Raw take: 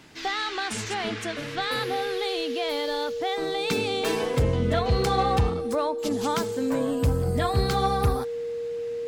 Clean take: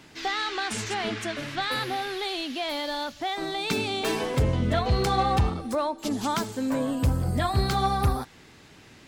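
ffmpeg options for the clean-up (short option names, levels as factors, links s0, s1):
-af "bandreject=f=470:w=30"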